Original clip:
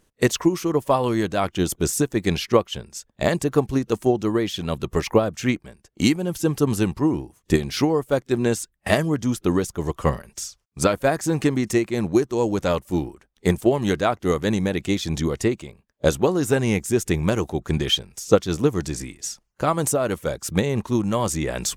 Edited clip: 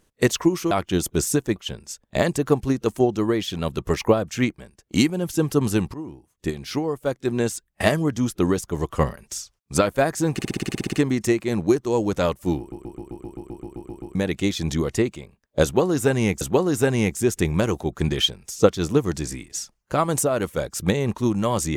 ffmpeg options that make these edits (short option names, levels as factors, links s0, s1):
-filter_complex "[0:a]asplit=27[s0][s1][s2][s3][s4][s5][s6][s7][s8][s9][s10][s11][s12][s13][s14][s15][s16][s17][s18][s19][s20][s21][s22][s23][s24][s25][s26];[s0]atrim=end=0.712[s27];[s1]atrim=start=1.368:end=2.222[s28];[s2]atrim=start=2.618:end=7,asetpts=PTS-STARTPTS,afade=t=out:st=4.378:d=0.004:c=hsin:silence=0.177828[s29];[s3]atrim=start=7:end=11.452,asetpts=PTS-STARTPTS,afade=t=in:d=1.88:silence=0.177828[s30];[s4]atrim=start=11.388:end=11.452[s31];[s5]atrim=start=11.388:end=11.452[s32];[s6]atrim=start=11.388:end=11.452[s33];[s7]atrim=start=11.388:end=11.452[s34];[s8]atrim=start=11.388:end=11.452[s35];[s9]atrim=start=11.388:end=11.452[s36];[s10]atrim=start=11.388:end=11.452[s37];[s11]atrim=start=11.388:end=11.452[s38];[s12]atrim=start=11.388:end=11.452[s39];[s13]atrim=start=11.388:end=13.182[s40];[s14]atrim=start=13.048:end=13.182[s41];[s15]atrim=start=13.048:end=13.182[s42];[s16]atrim=start=13.048:end=13.182[s43];[s17]atrim=start=13.048:end=13.182[s44];[s18]atrim=start=13.048:end=13.182[s45];[s19]atrim=start=13.048:end=13.182[s46];[s20]atrim=start=13.048:end=13.182[s47];[s21]atrim=start=13.048:end=13.182[s48];[s22]atrim=start=13.048:end=13.182[s49];[s23]atrim=start=13.048:end=13.182[s50];[s24]atrim=start=13.048:end=13.182[s51];[s25]atrim=start=14.608:end=16.872[s52];[s26]atrim=start=16.098[s53];[s27][s28]acrossfade=d=0.004:c1=hsin:c2=hsin[s54];[s29][s30]concat=n=2:v=0:a=1[s55];[s54][s55]acrossfade=d=0.004:c1=hsin:c2=hsin[s56];[s56][s31]acrossfade=d=0.004:c1=hsin:c2=hsin[s57];[s57][s32]acrossfade=d=0.004:c1=hsin:c2=hsin[s58];[s58][s33]acrossfade=d=0.004:c1=hsin:c2=hsin[s59];[s59][s34]acrossfade=d=0.004:c1=hsin:c2=hsin[s60];[s60][s35]acrossfade=d=0.004:c1=hsin:c2=hsin[s61];[s61][s36]acrossfade=d=0.004:c1=hsin:c2=hsin[s62];[s62][s37]acrossfade=d=0.004:c1=hsin:c2=hsin[s63];[s63][s38]acrossfade=d=0.004:c1=hsin:c2=hsin[s64];[s64][s39]acrossfade=d=0.004:c1=hsin:c2=hsin[s65];[s65][s40]acrossfade=d=0.004:c1=hsin:c2=hsin[s66];[s66][s41]acrossfade=d=0.004:c1=hsin:c2=hsin[s67];[s67][s42]acrossfade=d=0.004:c1=hsin:c2=hsin[s68];[s68][s43]acrossfade=d=0.004:c1=hsin:c2=hsin[s69];[s69][s44]acrossfade=d=0.004:c1=hsin:c2=hsin[s70];[s70][s45]acrossfade=d=0.004:c1=hsin:c2=hsin[s71];[s71][s46]acrossfade=d=0.004:c1=hsin:c2=hsin[s72];[s72][s47]acrossfade=d=0.004:c1=hsin:c2=hsin[s73];[s73][s48]acrossfade=d=0.004:c1=hsin:c2=hsin[s74];[s74][s49]acrossfade=d=0.004:c1=hsin:c2=hsin[s75];[s75][s50]acrossfade=d=0.004:c1=hsin:c2=hsin[s76];[s76][s51]acrossfade=d=0.004:c1=hsin:c2=hsin[s77];[s77][s52]acrossfade=d=0.004:c1=hsin:c2=hsin[s78];[s78][s53]acrossfade=d=0.004:c1=hsin:c2=hsin"